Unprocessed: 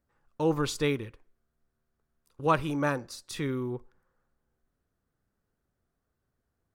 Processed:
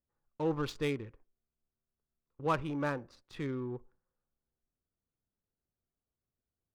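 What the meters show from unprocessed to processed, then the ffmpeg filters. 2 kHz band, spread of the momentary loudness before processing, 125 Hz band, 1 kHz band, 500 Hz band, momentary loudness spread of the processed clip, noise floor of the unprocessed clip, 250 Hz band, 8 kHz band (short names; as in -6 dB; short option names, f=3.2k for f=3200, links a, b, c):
-6.5 dB, 11 LU, -5.5 dB, -6.5 dB, -5.5 dB, 11 LU, -82 dBFS, -5.5 dB, -14.5 dB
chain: -af "adynamicsmooth=sensitivity=6.5:basefreq=1.6k,agate=range=-7dB:threshold=-55dB:ratio=16:detection=peak,asoftclip=type=tanh:threshold=-14.5dB,volume=-5dB"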